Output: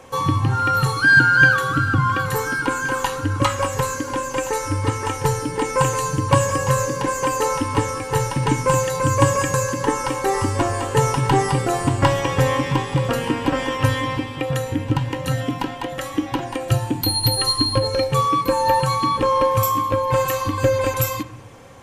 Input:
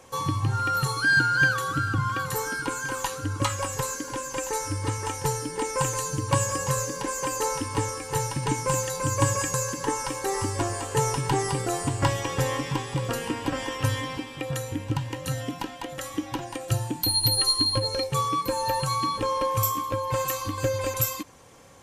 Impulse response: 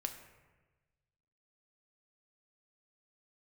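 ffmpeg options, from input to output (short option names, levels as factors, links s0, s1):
-filter_complex "[0:a]asplit=2[s0][s1];[1:a]atrim=start_sample=2205,lowpass=4200[s2];[s1][s2]afir=irnorm=-1:irlink=0,volume=1.12[s3];[s0][s3]amix=inputs=2:normalize=0,volume=1.26"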